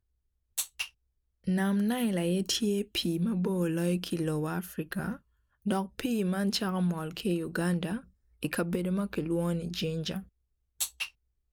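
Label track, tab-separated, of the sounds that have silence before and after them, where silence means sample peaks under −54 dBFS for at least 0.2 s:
0.580000	0.900000	sound
1.440000	5.190000	sound
5.620000	8.100000	sound
8.420000	10.280000	sound
10.800000	11.100000	sound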